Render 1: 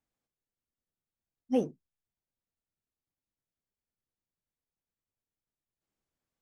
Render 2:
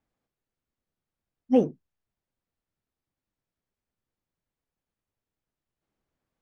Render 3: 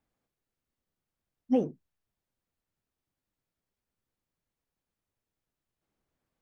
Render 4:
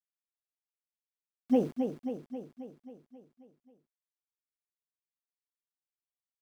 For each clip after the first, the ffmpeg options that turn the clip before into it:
-af "lowpass=f=2000:p=1,volume=2.37"
-af "alimiter=limit=0.15:level=0:latency=1:release=225"
-filter_complex "[0:a]aeval=exprs='val(0)*gte(abs(val(0)),0.00473)':c=same,asplit=2[s0][s1];[s1]aecho=0:1:268|536|804|1072|1340|1608|1876|2144:0.473|0.284|0.17|0.102|0.0613|0.0368|0.0221|0.0132[s2];[s0][s2]amix=inputs=2:normalize=0"

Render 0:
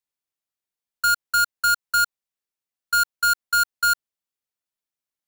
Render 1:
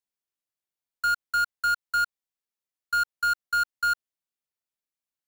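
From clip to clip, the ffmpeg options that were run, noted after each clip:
-filter_complex "[0:a]acrossover=split=3700[s0][s1];[s1]acompressor=threshold=0.0251:ratio=4:attack=1:release=60[s2];[s0][s2]amix=inputs=2:normalize=0,volume=0.631"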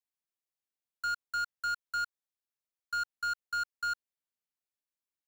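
-af "asoftclip=type=tanh:threshold=0.0708,volume=0.531"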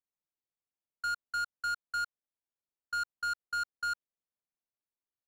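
-af "adynamicsmooth=sensitivity=7.5:basefreq=1400"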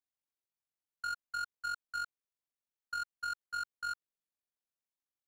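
-af "tremolo=f=46:d=0.621,volume=0.841"

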